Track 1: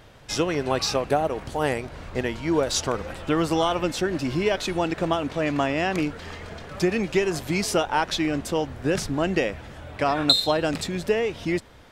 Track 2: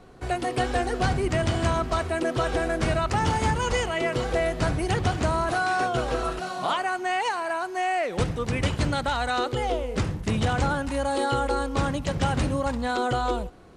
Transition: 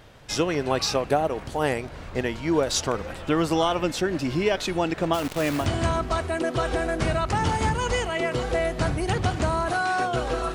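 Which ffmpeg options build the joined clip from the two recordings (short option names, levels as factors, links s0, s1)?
-filter_complex "[0:a]asplit=3[s0][s1][s2];[s0]afade=t=out:st=5.13:d=0.02[s3];[s1]acrusher=bits=6:dc=4:mix=0:aa=0.000001,afade=t=in:st=5.13:d=0.02,afade=t=out:st=5.68:d=0.02[s4];[s2]afade=t=in:st=5.68:d=0.02[s5];[s3][s4][s5]amix=inputs=3:normalize=0,apad=whole_dur=10.54,atrim=end=10.54,atrim=end=5.68,asetpts=PTS-STARTPTS[s6];[1:a]atrim=start=1.37:end=6.35,asetpts=PTS-STARTPTS[s7];[s6][s7]acrossfade=d=0.12:c1=tri:c2=tri"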